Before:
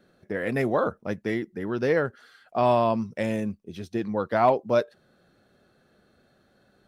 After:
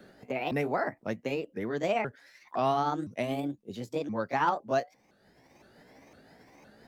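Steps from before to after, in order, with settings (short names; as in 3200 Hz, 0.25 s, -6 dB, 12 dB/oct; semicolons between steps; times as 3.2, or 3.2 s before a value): repeated pitch sweeps +7 st, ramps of 0.511 s; three-band squash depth 40%; gain -4 dB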